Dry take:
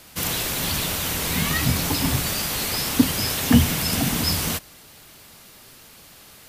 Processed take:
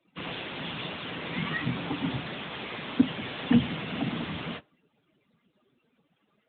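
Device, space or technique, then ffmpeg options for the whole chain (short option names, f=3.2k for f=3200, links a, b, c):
mobile call with aggressive noise cancelling: -af "highpass=150,afftdn=nr=24:nf=-44,volume=-4.5dB" -ar 8000 -c:a libopencore_amrnb -b:a 10200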